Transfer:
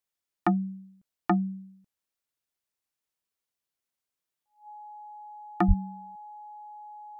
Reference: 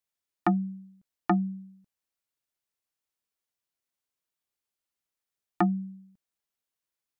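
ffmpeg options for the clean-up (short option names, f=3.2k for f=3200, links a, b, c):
-filter_complex "[0:a]bandreject=f=840:w=30,asplit=3[a][b][c];[a]afade=t=out:st=5.67:d=0.02[d];[b]highpass=f=140:w=0.5412,highpass=f=140:w=1.3066,afade=t=in:st=5.67:d=0.02,afade=t=out:st=5.79:d=0.02[e];[c]afade=t=in:st=5.79:d=0.02[f];[d][e][f]amix=inputs=3:normalize=0"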